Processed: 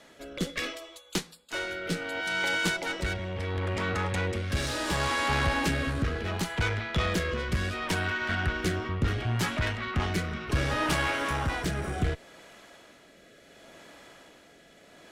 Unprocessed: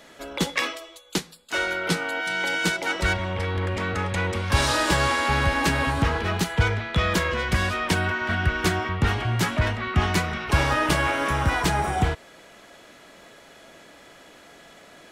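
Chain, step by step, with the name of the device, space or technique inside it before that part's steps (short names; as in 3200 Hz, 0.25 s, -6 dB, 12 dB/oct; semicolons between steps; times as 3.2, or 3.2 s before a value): overdriven rotary cabinet (tube stage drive 19 dB, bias 0.45; rotary speaker horn 0.7 Hz)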